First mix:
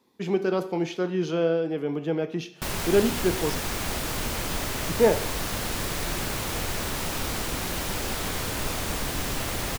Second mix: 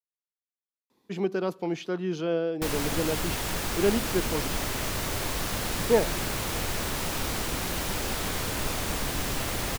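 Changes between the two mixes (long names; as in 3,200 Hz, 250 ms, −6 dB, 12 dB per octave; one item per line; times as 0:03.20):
speech: entry +0.90 s
reverb: off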